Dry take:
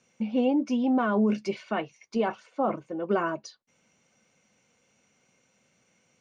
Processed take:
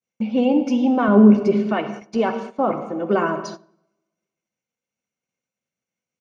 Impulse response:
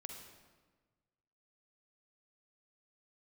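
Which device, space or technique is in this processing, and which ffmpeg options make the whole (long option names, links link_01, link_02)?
keyed gated reverb: -filter_complex "[0:a]agate=range=-33dB:threshold=-54dB:ratio=3:detection=peak,asettb=1/sr,asplit=3[link_01][link_02][link_03];[link_01]atrim=end=1.084[link_04];[link_02]atrim=start=1.08:end=1.69,asetpts=PTS-STARTPTS,afade=type=in:duration=0.004:curve=qsin,afade=type=out:start_time=0.606:duration=0.004:curve=qsin,tiltshelf=frequency=970:gain=7.5[link_05];[link_03]atrim=start=1.686[link_06];[link_04][link_05]acrossfade=duration=0.004:curve1=hsin:curve2=qsin[link_07];[link_07][link_06]acrossfade=duration=0.004:curve1=qsin:curve2=hsin,asplit=3[link_08][link_09][link_10];[1:a]atrim=start_sample=2205[link_11];[link_09][link_11]afir=irnorm=-1:irlink=0[link_12];[link_10]apad=whole_len=273802[link_13];[link_12][link_13]sidechaingate=range=-23dB:threshold=-49dB:ratio=16:detection=peak,volume=6dB[link_14];[link_08][link_14]amix=inputs=2:normalize=0,asplit=2[link_15][link_16];[link_16]adelay=102,lowpass=frequency=1400:poles=1,volume=-21dB,asplit=2[link_17][link_18];[link_18]adelay=102,lowpass=frequency=1400:poles=1,volume=0.4,asplit=2[link_19][link_20];[link_20]adelay=102,lowpass=frequency=1400:poles=1,volume=0.4[link_21];[link_15][link_17][link_19][link_21]amix=inputs=4:normalize=0"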